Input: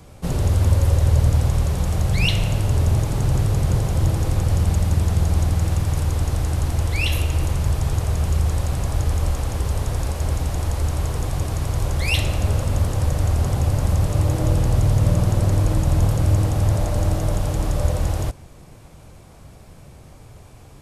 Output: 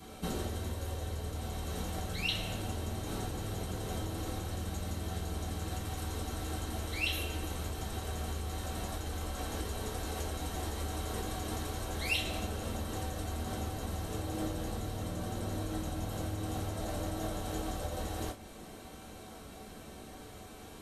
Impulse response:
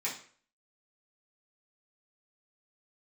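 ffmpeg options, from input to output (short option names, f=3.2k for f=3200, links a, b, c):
-filter_complex "[0:a]acompressor=threshold=-27dB:ratio=6[a];[1:a]atrim=start_sample=2205,asetrate=74970,aresample=44100[b];[a][b]afir=irnorm=-1:irlink=0,volume=2dB"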